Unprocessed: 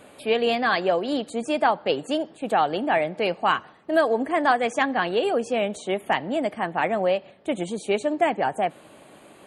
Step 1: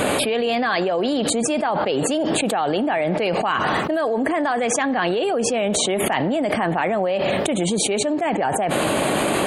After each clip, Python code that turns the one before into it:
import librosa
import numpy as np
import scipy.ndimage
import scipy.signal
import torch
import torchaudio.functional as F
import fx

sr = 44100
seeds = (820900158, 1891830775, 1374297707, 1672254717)

y = fx.env_flatten(x, sr, amount_pct=100)
y = y * librosa.db_to_amplitude(-5.0)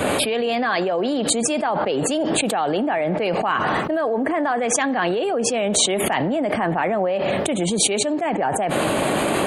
y = fx.band_widen(x, sr, depth_pct=70)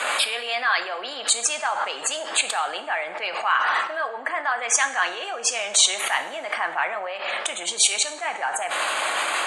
y = scipy.signal.sosfilt(scipy.signal.cheby1(2, 1.0, [1200.0, 7600.0], 'bandpass', fs=sr, output='sos'), x)
y = fx.rev_double_slope(y, sr, seeds[0], early_s=0.62, late_s=2.1, knee_db=-18, drr_db=8.0)
y = y * librosa.db_to_amplitude(2.5)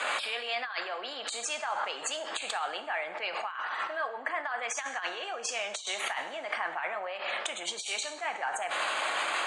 y = scipy.signal.sosfilt(scipy.signal.butter(2, 7000.0, 'lowpass', fs=sr, output='sos'), x)
y = fx.over_compress(y, sr, threshold_db=-24.0, ratio=-0.5)
y = y * librosa.db_to_amplitude(-7.5)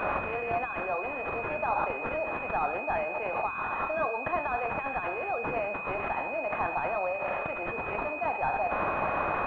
y = 10.0 ** (-21.5 / 20.0) * np.tanh(x / 10.0 ** (-21.5 / 20.0))
y = fx.pwm(y, sr, carrier_hz=2500.0)
y = y * librosa.db_to_amplitude(7.5)